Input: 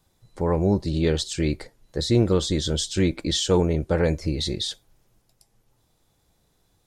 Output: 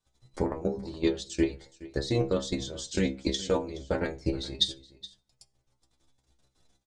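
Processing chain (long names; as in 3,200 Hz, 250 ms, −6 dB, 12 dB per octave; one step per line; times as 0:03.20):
low-pass filter 8,300 Hz 24 dB per octave
high-shelf EQ 4,900 Hz +6 dB
mains-hum notches 50/100/150/200 Hz
in parallel at −1 dB: downward compressor 12 to 1, threshold −27 dBFS, peak gain reduction 14 dB
on the sum: transient designer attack +11 dB, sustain −7 dB
output level in coarse steps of 15 dB
stiff-string resonator 65 Hz, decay 0.31 s, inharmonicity 0.002
single-tap delay 421 ms −18.5 dB
on a send at −19 dB: convolution reverb RT60 0.45 s, pre-delay 3 ms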